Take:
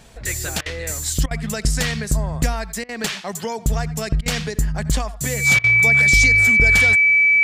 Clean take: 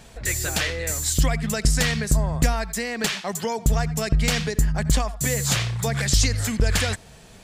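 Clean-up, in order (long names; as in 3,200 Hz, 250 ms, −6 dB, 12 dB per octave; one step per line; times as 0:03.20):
notch filter 2,300 Hz, Q 30
repair the gap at 0:00.61/0:01.26/0:02.84/0:04.21/0:05.59, 48 ms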